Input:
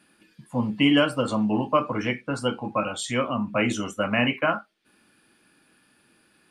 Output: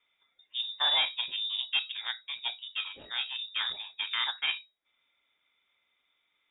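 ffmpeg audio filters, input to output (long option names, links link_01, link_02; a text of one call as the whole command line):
ffmpeg -i in.wav -af "equalizer=frequency=160:width_type=o:width=0.67:gain=-11,equalizer=frequency=400:width_type=o:width=0.67:gain=-9,equalizer=frequency=1000:width_type=o:width=0.67:gain=-8,equalizer=frequency=2500:width_type=o:width=0.67:gain=-8,aeval=exprs='0.224*(cos(1*acos(clip(val(0)/0.224,-1,1)))-cos(1*PI/2))+0.0178*(cos(4*acos(clip(val(0)/0.224,-1,1)))-cos(4*PI/2))+0.0126*(cos(7*acos(clip(val(0)/0.224,-1,1)))-cos(7*PI/2))+0.00316*(cos(8*acos(clip(val(0)/0.224,-1,1)))-cos(8*PI/2))':channel_layout=same,lowpass=frequency=3200:width_type=q:width=0.5098,lowpass=frequency=3200:width_type=q:width=0.6013,lowpass=frequency=3200:width_type=q:width=0.9,lowpass=frequency=3200:width_type=q:width=2.563,afreqshift=-3800,volume=-3dB" out.wav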